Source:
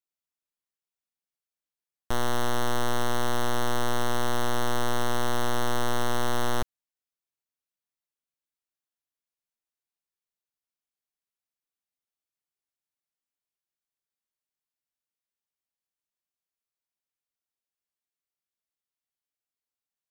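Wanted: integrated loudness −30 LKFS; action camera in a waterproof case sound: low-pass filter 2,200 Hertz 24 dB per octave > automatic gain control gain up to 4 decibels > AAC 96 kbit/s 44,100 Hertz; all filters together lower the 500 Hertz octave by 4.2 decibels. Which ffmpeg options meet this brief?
ffmpeg -i in.wav -af "lowpass=frequency=2200:width=0.5412,lowpass=frequency=2200:width=1.3066,equalizer=frequency=500:width_type=o:gain=-5.5,dynaudnorm=maxgain=4dB,volume=1.5dB" -ar 44100 -c:a aac -b:a 96k out.aac

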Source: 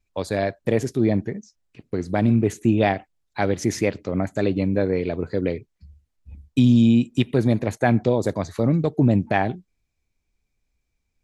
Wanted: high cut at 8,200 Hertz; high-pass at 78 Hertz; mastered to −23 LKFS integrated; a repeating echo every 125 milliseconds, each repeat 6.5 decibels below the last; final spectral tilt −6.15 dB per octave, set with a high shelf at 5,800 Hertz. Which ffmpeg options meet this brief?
ffmpeg -i in.wav -af "highpass=78,lowpass=8200,highshelf=frequency=5800:gain=3.5,aecho=1:1:125|250|375|500|625|750:0.473|0.222|0.105|0.0491|0.0231|0.0109,volume=-2dB" out.wav

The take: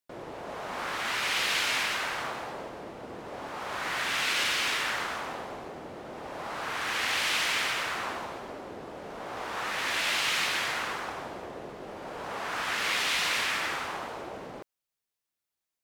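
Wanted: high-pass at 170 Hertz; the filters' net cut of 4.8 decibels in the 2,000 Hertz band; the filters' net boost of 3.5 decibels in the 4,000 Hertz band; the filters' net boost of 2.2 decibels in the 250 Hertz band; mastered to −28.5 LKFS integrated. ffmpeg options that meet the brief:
ffmpeg -i in.wav -af "highpass=170,equalizer=frequency=250:width_type=o:gain=4,equalizer=frequency=2000:width_type=o:gain=-8.5,equalizer=frequency=4000:width_type=o:gain=7.5,volume=0.5dB" out.wav

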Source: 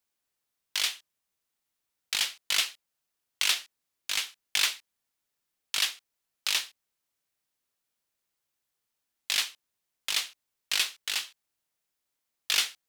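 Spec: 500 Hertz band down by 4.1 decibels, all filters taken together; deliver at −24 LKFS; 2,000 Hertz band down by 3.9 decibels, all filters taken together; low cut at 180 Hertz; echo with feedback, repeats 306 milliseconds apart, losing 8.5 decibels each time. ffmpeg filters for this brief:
ffmpeg -i in.wav -af "highpass=180,equalizer=frequency=500:width_type=o:gain=-5,equalizer=frequency=2000:width_type=o:gain=-5,aecho=1:1:306|612|918|1224:0.376|0.143|0.0543|0.0206,volume=7dB" out.wav

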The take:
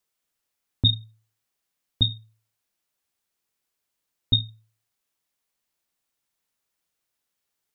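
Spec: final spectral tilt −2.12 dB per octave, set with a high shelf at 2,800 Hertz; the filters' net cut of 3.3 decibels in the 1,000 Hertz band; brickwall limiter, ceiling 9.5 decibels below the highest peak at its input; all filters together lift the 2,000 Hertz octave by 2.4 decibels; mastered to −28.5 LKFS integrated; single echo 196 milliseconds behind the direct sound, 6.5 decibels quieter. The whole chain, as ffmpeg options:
ffmpeg -i in.wav -af "equalizer=frequency=1000:width_type=o:gain=-5.5,equalizer=frequency=2000:width_type=o:gain=6.5,highshelf=frequency=2800:gain=-4,alimiter=limit=-17.5dB:level=0:latency=1,aecho=1:1:196:0.473,volume=3.5dB" out.wav

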